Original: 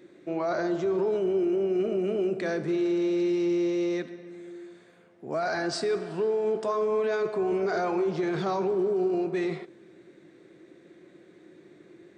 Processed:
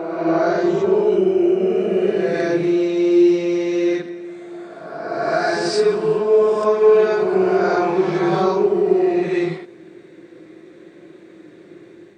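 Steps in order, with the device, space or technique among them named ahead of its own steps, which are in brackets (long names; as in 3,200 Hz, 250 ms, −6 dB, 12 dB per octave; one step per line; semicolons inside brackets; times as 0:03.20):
reverse reverb (reversed playback; convolution reverb RT60 1.9 s, pre-delay 12 ms, DRR −5 dB; reversed playback)
level +3.5 dB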